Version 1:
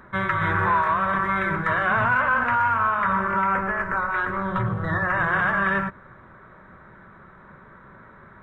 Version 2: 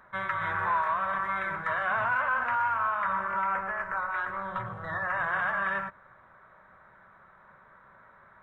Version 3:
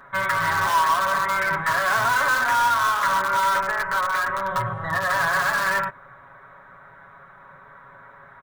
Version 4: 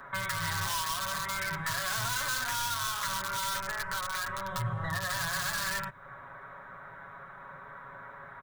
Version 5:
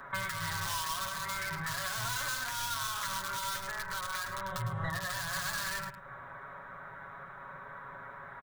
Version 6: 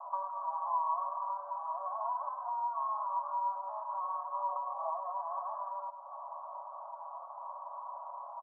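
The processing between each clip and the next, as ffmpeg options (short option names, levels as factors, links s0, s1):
-af "lowshelf=f=480:t=q:w=1.5:g=-8,volume=0.422"
-filter_complex "[0:a]asplit=2[s0][s1];[s1]aeval=exprs='(mod(17.8*val(0)+1,2)-1)/17.8':c=same,volume=0.355[s2];[s0][s2]amix=inputs=2:normalize=0,aecho=1:1:7.2:0.68,volume=1.78"
-filter_complex "[0:a]acrossover=split=160|3000[s0][s1][s2];[s1]acompressor=threshold=0.0158:ratio=6[s3];[s0][s3][s2]amix=inputs=3:normalize=0"
-af "alimiter=limit=0.0668:level=0:latency=1:release=321,aecho=1:1:106:0.282"
-af "asuperpass=centerf=820:order=12:qfactor=1.6,volume=2.37"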